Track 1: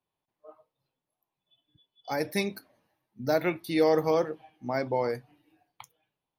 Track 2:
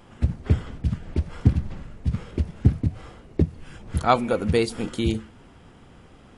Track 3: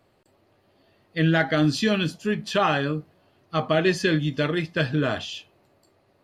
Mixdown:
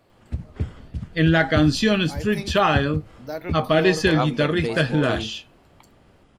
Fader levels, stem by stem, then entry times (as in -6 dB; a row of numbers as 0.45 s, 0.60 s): -6.0 dB, -6.5 dB, +3.0 dB; 0.00 s, 0.10 s, 0.00 s